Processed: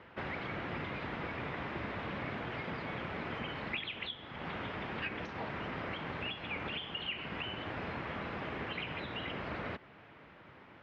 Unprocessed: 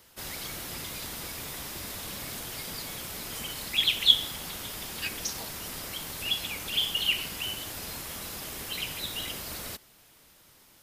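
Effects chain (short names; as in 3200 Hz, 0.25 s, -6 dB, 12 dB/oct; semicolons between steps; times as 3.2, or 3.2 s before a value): HPF 84 Hz 12 dB/oct; compressor 3:1, threshold -40 dBFS, peak gain reduction 20 dB; LPF 2300 Hz 24 dB/oct; gain +8 dB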